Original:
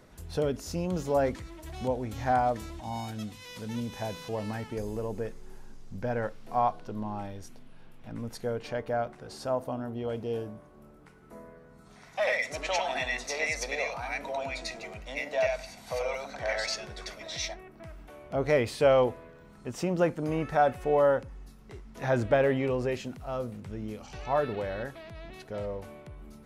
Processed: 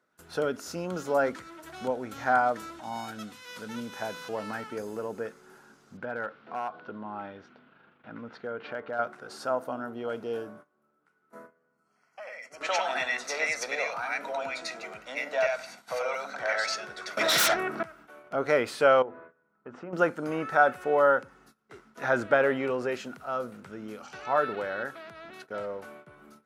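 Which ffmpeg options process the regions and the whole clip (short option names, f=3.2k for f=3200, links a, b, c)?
-filter_complex "[0:a]asettb=1/sr,asplit=3[a][b][c];[a]atrim=end=5.974[d];[b]atrim=start=5.97:end=8.99,asetpts=PTS-STARTPTS,afade=t=in:d=0.004:c=qsin,afade=t=out:st=3.016:d=0.004:c=qsin,lowpass=f=3.6k:w=0.5412,lowpass=f=3.6k:w=1.3066,acompressor=threshold=-33dB:ratio=2.5:attack=3.2:release=140:knee=1:detection=peak,asoftclip=type=hard:threshold=-28.5dB[e];[c]atrim=start=8.986[f];[d][e]acrossfade=d=0.004:c1=hsin:c2=qsin[g];[g][f]acrossfade=d=0.004:c1=qsin:c2=hsin,asettb=1/sr,asplit=3[h][i][j];[h]atrim=end=11.464[k];[i]atrim=start=11.46:end=12.61,asetpts=PTS-STARTPTS,afade=t=in:d=0.004:c=qsin,afade=t=out:st=1.146:d=0.004:c=qsin,equalizer=f=1.6k:t=o:w=0.43:g=-4,acompressor=threshold=-46dB:ratio=3:attack=3.2:release=140:knee=1:detection=peak,asuperstop=centerf=3700:order=8:qfactor=4.6[l];[j]atrim=start=12.606[m];[k][l]acrossfade=d=0.004:c1=hsin:c2=qsin[n];[n][m]acrossfade=d=0.004:c1=qsin:c2=hsin,asettb=1/sr,asplit=3[o][p][q];[o]atrim=end=17.174[r];[p]atrim=start=17.17:end=17.83,asetpts=PTS-STARTPTS,afade=t=in:d=0.004:c=qsin,afade=t=out:st=0.656:d=0.004:c=qsin,lowpass=11k,aeval=exprs='0.0944*sin(PI/2*5.01*val(0)/0.0944)':c=same[s];[q]atrim=start=17.826[t];[r][s]acrossfade=d=0.004:c1=hsin:c2=qsin[u];[u][t]acrossfade=d=0.004:c1=qsin:c2=hsin,asettb=1/sr,asplit=3[v][w][x];[v]atrim=end=19.024[y];[w]atrim=start=19.02:end=19.93,asetpts=PTS-STARTPTS,afade=t=in:d=0.004:c=qsin,afade=t=out:st=0.906:d=0.004:c=qsin,bandreject=f=50:t=h:w=6,bandreject=f=100:t=h:w=6,bandreject=f=150:t=h:w=6,bandreject=f=200:t=h:w=6,bandreject=f=250:t=h:w=6,bandreject=f=300:t=h:w=6,bandreject=f=350:t=h:w=6,acompressor=threshold=-38dB:ratio=2.5:attack=3.2:release=140:knee=1:detection=peak,lowpass=1.7k[z];[x]atrim=start=19.926[aa];[y][z]acrossfade=d=0.004:c1=hsin:c2=qsin[ab];[ab][aa]acrossfade=d=0.004:c1=qsin:c2=hsin,agate=range=-19dB:threshold=-47dB:ratio=16:detection=peak,highpass=230,equalizer=f=1.4k:w=3.5:g=13"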